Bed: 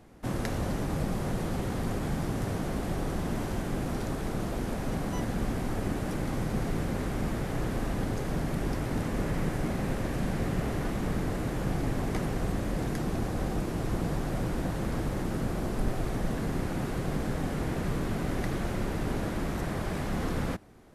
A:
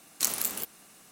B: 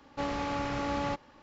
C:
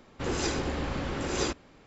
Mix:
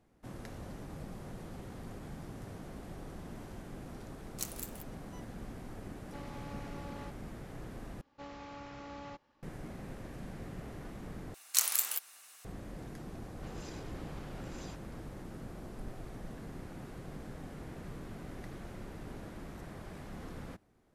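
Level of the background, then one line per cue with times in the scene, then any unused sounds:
bed −14.5 dB
0:04.18: mix in A −11.5 dB + expander for the loud parts, over −46 dBFS
0:05.95: mix in B −16 dB
0:08.01: overwrite with B −14.5 dB
0:11.34: overwrite with A −0.5 dB + high-pass filter 1,000 Hz
0:13.23: mix in C −12 dB + downward compressor, threshold −33 dBFS

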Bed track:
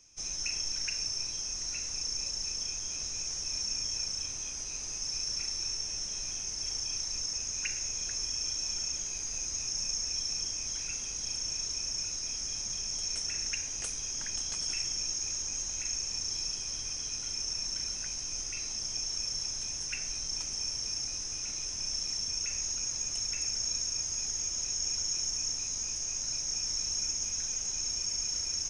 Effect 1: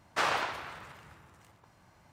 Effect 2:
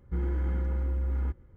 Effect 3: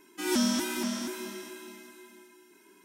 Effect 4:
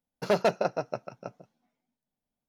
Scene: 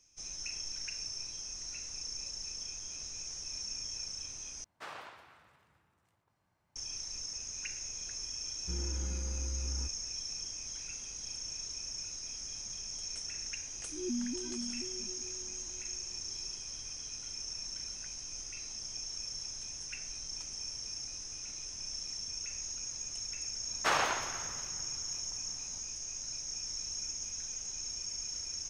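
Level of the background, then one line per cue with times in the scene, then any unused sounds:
bed track −6.5 dB
0:04.64: overwrite with 1 −17 dB + delay that swaps between a low-pass and a high-pass 122 ms, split 1,600 Hz, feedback 55%, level −13.5 dB
0:08.56: mix in 2 −8.5 dB + downsampling to 32,000 Hz
0:13.74: mix in 3 −8.5 dB + expanding power law on the bin magnitudes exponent 4
0:23.68: mix in 1 −0.5 dB
not used: 4

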